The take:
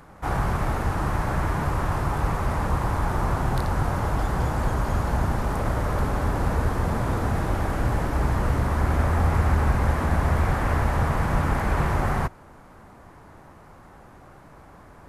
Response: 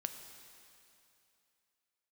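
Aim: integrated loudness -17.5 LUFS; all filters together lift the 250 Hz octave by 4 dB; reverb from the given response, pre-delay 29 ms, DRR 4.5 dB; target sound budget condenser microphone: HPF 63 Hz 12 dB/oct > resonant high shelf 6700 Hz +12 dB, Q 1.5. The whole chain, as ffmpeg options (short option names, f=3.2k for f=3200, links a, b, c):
-filter_complex "[0:a]equalizer=f=250:t=o:g=5.5,asplit=2[a][b];[1:a]atrim=start_sample=2205,adelay=29[c];[b][c]afir=irnorm=-1:irlink=0,volume=-3.5dB[d];[a][d]amix=inputs=2:normalize=0,highpass=63,highshelf=f=6.7k:t=q:w=1.5:g=12,volume=5.5dB"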